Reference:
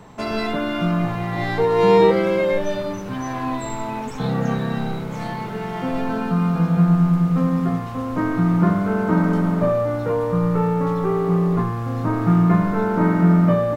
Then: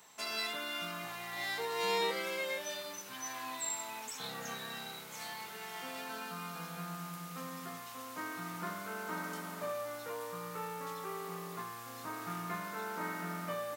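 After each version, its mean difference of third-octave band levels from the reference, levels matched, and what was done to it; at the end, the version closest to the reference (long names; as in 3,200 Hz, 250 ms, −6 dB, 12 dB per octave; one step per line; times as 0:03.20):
12.5 dB: first difference
level +2 dB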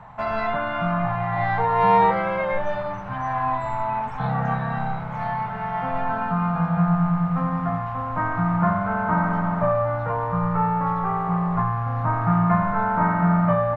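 6.5 dB: drawn EQ curve 130 Hz 0 dB, 380 Hz −18 dB, 750 Hz +6 dB, 1,700 Hz +2 dB, 7,100 Hz −22 dB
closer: second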